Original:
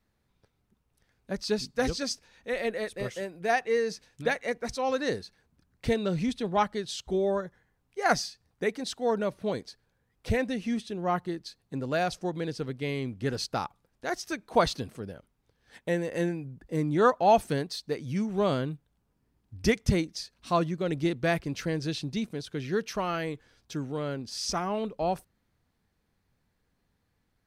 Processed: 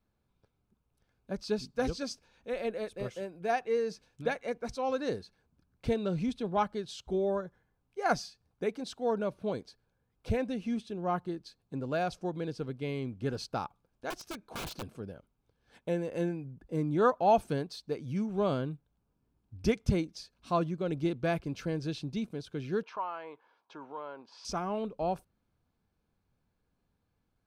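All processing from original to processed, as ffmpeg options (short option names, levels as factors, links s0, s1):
-filter_complex "[0:a]asettb=1/sr,asplit=3[s0][s1][s2];[s0]atrim=end=14.104[s3];[s1]atrim=start=14.1:end=15,asetpts=PTS-STARTPTS,afade=t=in:d=0.004:c=qsin,afade=t=out:st=0.896:d=0.004:c=qsin,acompressor=threshold=0.0355:ratio=2:attack=3.2:release=140:knee=1:detection=peak,aeval=exprs='(mod(23.7*val(0)+1,2)-1)/23.7':c=same[s4];[s2]atrim=start=14.996[s5];[s3][s4]acrossfade=d=0.004:c1=hsin:c2=qsin[s6];[s6][s5]acrossfade=d=0.004:c1=qsin:c2=hsin,asettb=1/sr,asplit=3[s7][s8][s9];[s7]atrim=end=22.834[s10];[s8]atrim=start=22.83:end=24.45,asetpts=PTS-STARTPTS,afade=t=in:d=0.004:c=qsin,afade=t=out:st=1.616:d=0.004:c=qsin,highpass=510,lowpass=2900,acompressor=threshold=0.01:ratio=2:attack=3.2:release=140:knee=1:detection=peak,equalizer=f=960:w=3.1:g=14[s11];[s9]atrim=start=24.446[s12];[s10][s11]acrossfade=d=0.004:c1=hsin:c2=qsin[s13];[s13][s12]acrossfade=d=0.004:c1=qsin:c2=hsin,highshelf=f=3100:g=-7.5,bandreject=f=1900:w=5.2,volume=0.708"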